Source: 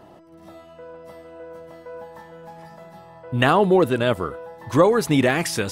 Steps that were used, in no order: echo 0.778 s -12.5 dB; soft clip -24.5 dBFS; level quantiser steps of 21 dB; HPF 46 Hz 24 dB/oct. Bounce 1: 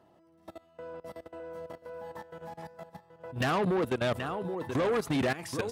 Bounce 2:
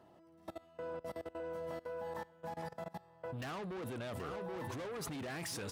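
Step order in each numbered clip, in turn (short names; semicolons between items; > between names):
level quantiser > echo > soft clip > HPF; soft clip > echo > level quantiser > HPF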